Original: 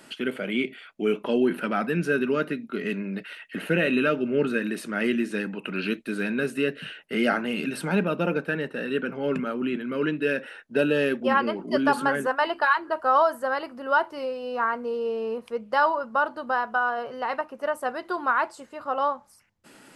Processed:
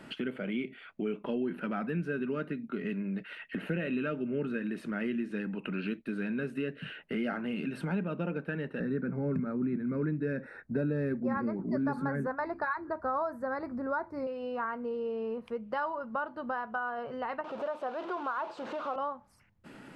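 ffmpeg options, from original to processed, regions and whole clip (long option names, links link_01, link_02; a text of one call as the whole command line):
ffmpeg -i in.wav -filter_complex "[0:a]asettb=1/sr,asplit=3[link_01][link_02][link_03];[link_01]atrim=end=8.804[link_04];[link_02]atrim=start=8.8:end=14.27,asetpts=PTS-STARTPTS,afade=type=in:duration=0.004:curve=qsin,afade=type=out:start_time=5.466:duration=0.004:curve=qsin,asuperstop=centerf=3000:order=4:qfactor=2,equalizer=frequency=67:width=0.34:gain=14[link_05];[link_03]atrim=start=14.266[link_06];[link_04][link_05]acrossfade=duration=0.004:curve1=hsin:curve2=qsin[link_07];[link_07][link_06]acrossfade=duration=0.004:curve1=qsin:curve2=hsin,asettb=1/sr,asplit=3[link_08][link_09][link_10];[link_08]atrim=end=17.444[link_11];[link_09]atrim=start=17.44:end=18.96,asetpts=PTS-STARTPTS,afade=type=in:duration=0.004:curve=qsin,afade=type=out:start_time=1.516:duration=0.004:curve=qsin,aeval=exprs='val(0)+0.5*0.0447*sgn(val(0))':channel_layout=same,highpass=430,lowpass=3300,equalizer=frequency=2000:width_type=o:width=0.71:gain=-11.5[link_12];[link_10]atrim=start=18.956[link_13];[link_11][link_12]acrossfade=duration=0.004:curve1=hsin:curve2=qsin[link_14];[link_14][link_13]acrossfade=duration=0.004:curve1=qsin:curve2=hsin,bass=frequency=250:gain=8,treble=frequency=4000:gain=-13,acompressor=threshold=-36dB:ratio=2.5" out.wav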